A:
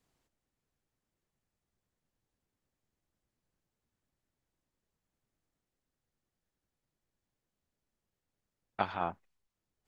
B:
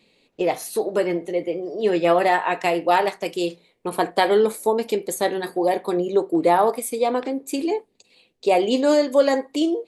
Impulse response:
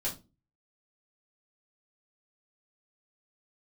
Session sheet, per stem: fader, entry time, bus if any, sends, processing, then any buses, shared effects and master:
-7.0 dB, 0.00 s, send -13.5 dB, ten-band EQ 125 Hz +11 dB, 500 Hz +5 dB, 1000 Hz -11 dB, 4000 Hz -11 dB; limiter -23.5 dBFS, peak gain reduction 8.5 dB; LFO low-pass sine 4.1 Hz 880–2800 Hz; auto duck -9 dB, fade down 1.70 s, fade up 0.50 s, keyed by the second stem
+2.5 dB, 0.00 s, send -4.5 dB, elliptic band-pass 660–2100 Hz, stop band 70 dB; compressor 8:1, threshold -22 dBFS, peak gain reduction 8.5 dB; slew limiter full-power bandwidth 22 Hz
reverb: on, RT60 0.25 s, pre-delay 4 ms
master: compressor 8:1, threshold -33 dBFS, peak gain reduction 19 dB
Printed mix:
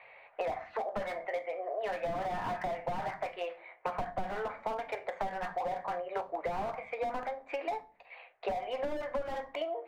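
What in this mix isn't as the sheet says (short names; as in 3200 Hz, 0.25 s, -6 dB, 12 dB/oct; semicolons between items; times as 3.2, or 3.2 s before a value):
stem B +2.5 dB -> +14.5 dB; reverb return -7.0 dB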